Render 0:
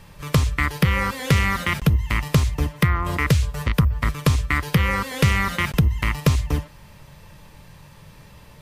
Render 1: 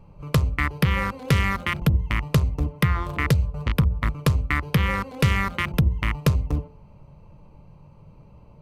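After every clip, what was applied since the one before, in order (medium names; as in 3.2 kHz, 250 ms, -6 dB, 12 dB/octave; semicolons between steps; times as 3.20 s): local Wiener filter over 25 samples; de-hum 87.61 Hz, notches 10; trim -1.5 dB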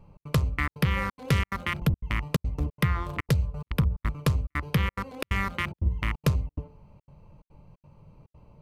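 trance gate "xx.xxxxx.xxxx.x" 178 bpm -60 dB; trim -4 dB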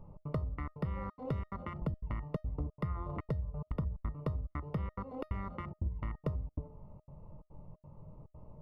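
compression 4:1, threshold -34 dBFS, peak gain reduction 13.5 dB; Savitzky-Golay filter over 65 samples; feedback comb 620 Hz, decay 0.23 s, harmonics all, mix 70%; trim +10 dB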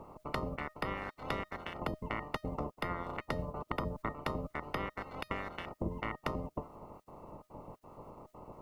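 spectral peaks clipped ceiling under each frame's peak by 29 dB; trim -1 dB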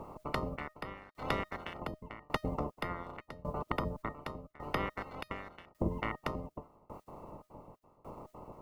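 tremolo saw down 0.87 Hz, depth 95%; trim +4.5 dB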